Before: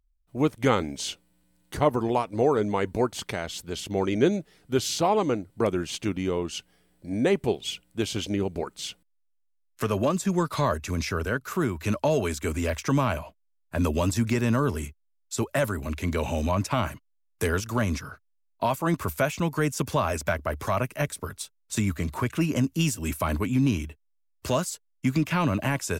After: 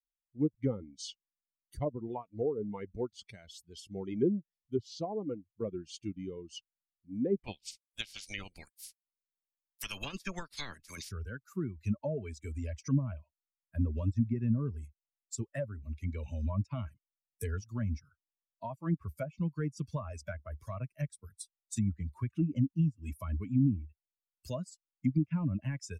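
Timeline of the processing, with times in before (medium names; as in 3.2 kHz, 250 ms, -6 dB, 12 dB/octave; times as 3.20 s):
7.36–11.10 s: spectral peaks clipped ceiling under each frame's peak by 27 dB
whole clip: expander on every frequency bin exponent 2; low-pass that closes with the level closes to 590 Hz, closed at -23 dBFS; peaking EQ 1.2 kHz -12.5 dB 2.3 oct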